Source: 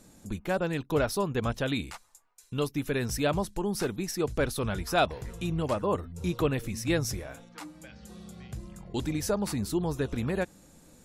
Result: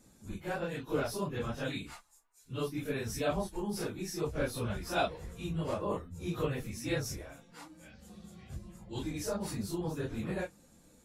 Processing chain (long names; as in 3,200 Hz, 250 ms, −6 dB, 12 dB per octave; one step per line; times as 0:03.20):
random phases in long frames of 100 ms
level −6 dB